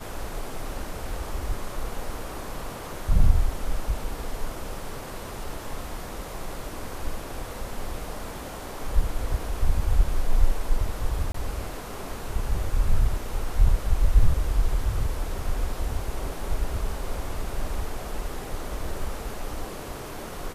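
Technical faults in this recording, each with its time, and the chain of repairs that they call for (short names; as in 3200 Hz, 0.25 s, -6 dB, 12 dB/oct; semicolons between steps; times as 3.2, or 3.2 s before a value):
1.1 gap 2.2 ms
11.32–11.34 gap 24 ms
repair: interpolate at 1.1, 2.2 ms; interpolate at 11.32, 24 ms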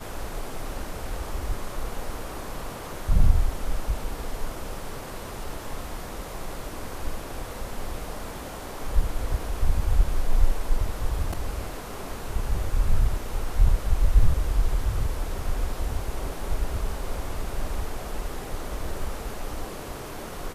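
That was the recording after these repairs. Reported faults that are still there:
none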